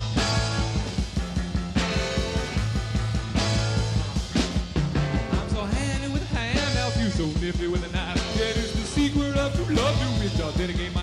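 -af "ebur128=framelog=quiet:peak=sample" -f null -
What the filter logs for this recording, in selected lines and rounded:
Integrated loudness:
  I:         -25.7 LUFS
  Threshold: -35.7 LUFS
Loudness range:
  LRA:         1.3 LU
  Threshold: -45.8 LUFS
  LRA low:   -26.3 LUFS
  LRA high:  -25.0 LUFS
Sample peak:
  Peak:      -10.6 dBFS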